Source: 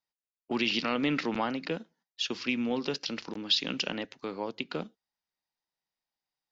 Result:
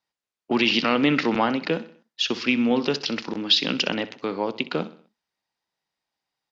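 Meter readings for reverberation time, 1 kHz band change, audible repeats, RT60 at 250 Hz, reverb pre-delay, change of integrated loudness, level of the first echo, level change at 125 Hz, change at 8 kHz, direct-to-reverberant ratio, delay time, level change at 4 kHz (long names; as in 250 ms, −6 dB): no reverb audible, +9.0 dB, 3, no reverb audible, no reverb audible, +8.0 dB, −16.0 dB, +8.0 dB, can't be measured, no reverb audible, 63 ms, +7.5 dB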